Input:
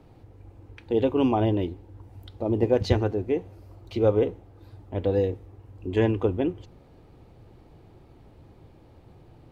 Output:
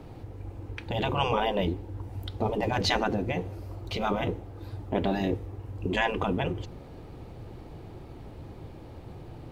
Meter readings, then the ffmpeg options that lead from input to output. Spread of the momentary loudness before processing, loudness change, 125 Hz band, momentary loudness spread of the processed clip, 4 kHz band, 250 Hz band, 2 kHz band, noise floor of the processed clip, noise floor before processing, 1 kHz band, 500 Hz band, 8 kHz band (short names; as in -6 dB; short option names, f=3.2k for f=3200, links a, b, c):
13 LU, -4.5 dB, -3.5 dB, 19 LU, +8.0 dB, -5.0 dB, +8.0 dB, -46 dBFS, -54 dBFS, +4.5 dB, -6.0 dB, n/a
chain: -af "afftfilt=real='re*lt(hypot(re,im),0.2)':imag='im*lt(hypot(re,im),0.2)':win_size=1024:overlap=0.75,volume=8dB"